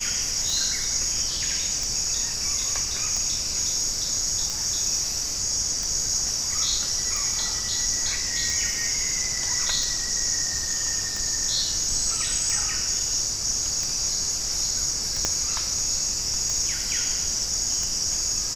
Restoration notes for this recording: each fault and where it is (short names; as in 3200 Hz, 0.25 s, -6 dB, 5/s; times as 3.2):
tick 45 rpm
15.25 pop -8 dBFS